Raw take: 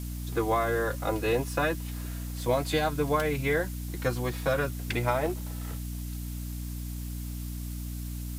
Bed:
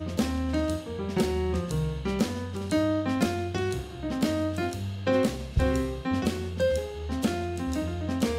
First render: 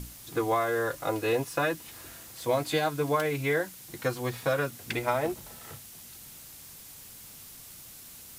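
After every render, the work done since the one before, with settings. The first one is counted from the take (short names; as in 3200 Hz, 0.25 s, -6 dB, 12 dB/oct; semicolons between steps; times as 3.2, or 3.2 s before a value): notches 60/120/180/240/300 Hz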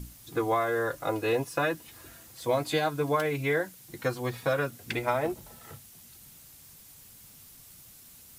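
denoiser 6 dB, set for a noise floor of -48 dBFS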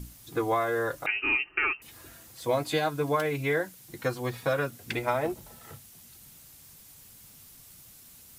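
1.06–1.82 inverted band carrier 2900 Hz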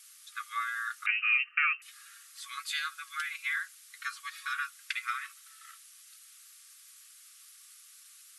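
FFT band-pass 1100–12000 Hz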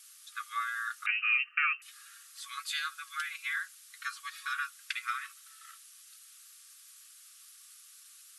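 bell 2100 Hz -3.5 dB 0.34 oct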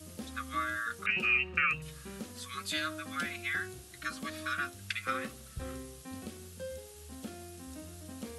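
add bed -17 dB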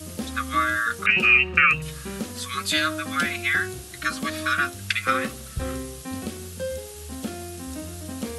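gain +11.5 dB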